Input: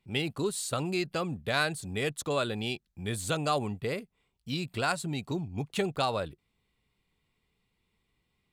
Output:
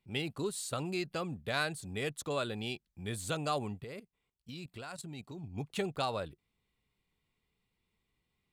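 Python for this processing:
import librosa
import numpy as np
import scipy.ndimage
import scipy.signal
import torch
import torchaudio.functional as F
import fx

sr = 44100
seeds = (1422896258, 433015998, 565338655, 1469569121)

y = fx.level_steps(x, sr, step_db=13, at=(3.84, 5.44))
y = y * librosa.db_to_amplitude(-5.0)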